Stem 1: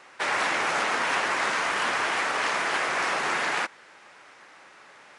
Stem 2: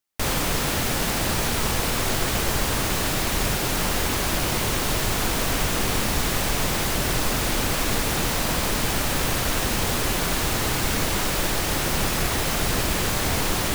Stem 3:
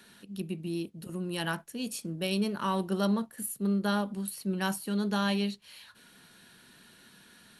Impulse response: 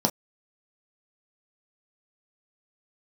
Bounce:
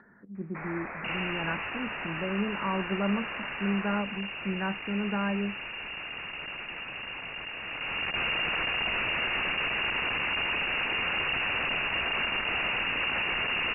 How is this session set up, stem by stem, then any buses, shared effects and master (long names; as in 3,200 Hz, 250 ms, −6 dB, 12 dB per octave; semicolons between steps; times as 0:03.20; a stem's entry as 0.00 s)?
−13.0 dB, 0.35 s, bus A, no send, no processing
−4.0 dB, 0.85 s, bus A, no send, comparator with hysteresis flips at −28 dBFS; automatic ducking −11 dB, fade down 1.90 s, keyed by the third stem
−1.0 dB, 0.00 s, no bus, no send, Butterworth low-pass 2,000 Hz 96 dB per octave
bus A: 0.0 dB, voice inversion scrambler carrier 2,800 Hz; brickwall limiter −22.5 dBFS, peak gain reduction 4 dB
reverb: not used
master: upward compression, threshold −54 dBFS